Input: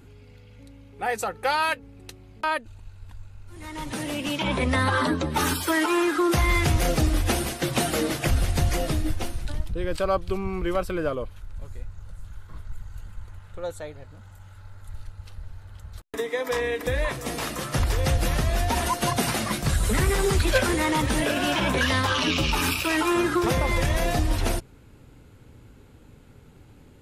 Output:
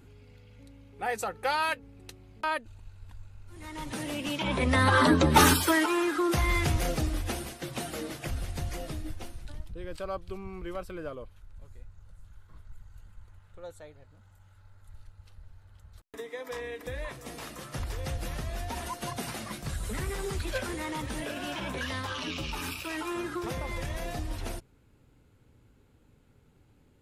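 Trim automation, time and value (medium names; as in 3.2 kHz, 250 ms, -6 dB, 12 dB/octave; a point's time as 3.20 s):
4.47 s -4.5 dB
5.38 s +6 dB
5.94 s -5 dB
6.66 s -5 dB
7.60 s -11.5 dB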